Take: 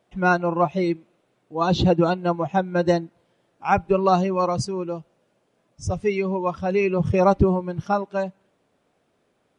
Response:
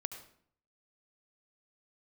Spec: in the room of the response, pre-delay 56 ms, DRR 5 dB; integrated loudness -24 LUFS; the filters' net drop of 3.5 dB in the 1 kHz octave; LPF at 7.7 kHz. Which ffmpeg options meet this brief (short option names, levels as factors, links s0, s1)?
-filter_complex "[0:a]lowpass=7700,equalizer=f=1000:t=o:g=-5,asplit=2[s0][s1];[1:a]atrim=start_sample=2205,adelay=56[s2];[s1][s2]afir=irnorm=-1:irlink=0,volume=0.631[s3];[s0][s3]amix=inputs=2:normalize=0,volume=0.841"